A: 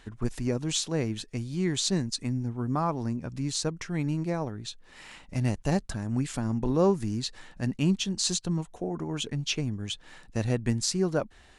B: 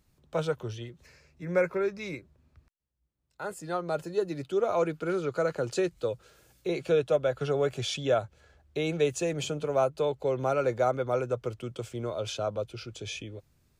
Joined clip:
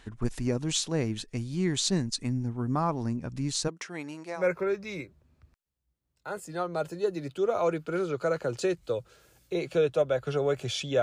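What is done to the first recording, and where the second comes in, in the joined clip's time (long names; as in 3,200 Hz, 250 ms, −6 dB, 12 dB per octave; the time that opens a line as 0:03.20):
A
0:03.67–0:04.47: high-pass filter 280 Hz → 710 Hz
0:04.41: continue with B from 0:01.55, crossfade 0.12 s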